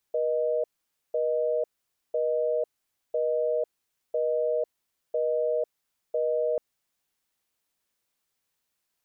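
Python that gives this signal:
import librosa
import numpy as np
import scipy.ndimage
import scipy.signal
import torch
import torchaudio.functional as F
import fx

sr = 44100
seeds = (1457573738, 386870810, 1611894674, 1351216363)

y = fx.call_progress(sr, length_s=6.44, kind='busy tone', level_db=-26.0)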